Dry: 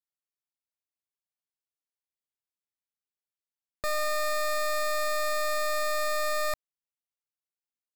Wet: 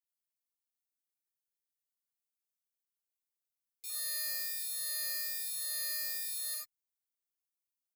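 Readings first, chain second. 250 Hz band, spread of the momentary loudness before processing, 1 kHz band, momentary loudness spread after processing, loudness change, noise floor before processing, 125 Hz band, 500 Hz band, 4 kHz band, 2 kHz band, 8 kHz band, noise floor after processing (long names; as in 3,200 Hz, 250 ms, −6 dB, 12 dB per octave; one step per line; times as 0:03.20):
below −25 dB, 4 LU, −32.5 dB, 6 LU, −5.5 dB, below −85 dBFS, can't be measured, −32.5 dB, −4.0 dB, −13.5 dB, 0.0 dB, below −85 dBFS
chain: time-frequency box erased 0:03.56–0:03.90, 460–2,100 Hz
first difference
phaser with its sweep stopped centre 310 Hz, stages 4
reverb whose tail is shaped and stops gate 120 ms flat, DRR −5 dB
barber-pole flanger 4.4 ms −1.2 Hz
level −3.5 dB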